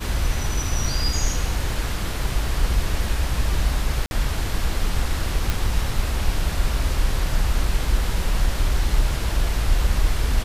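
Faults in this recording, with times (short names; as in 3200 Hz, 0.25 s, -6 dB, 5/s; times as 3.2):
4.06–4.11 gap 51 ms
5.5 pop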